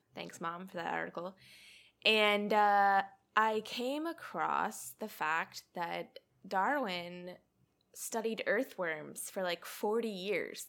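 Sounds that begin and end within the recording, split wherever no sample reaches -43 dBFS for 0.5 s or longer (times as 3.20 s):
2.02–7.33 s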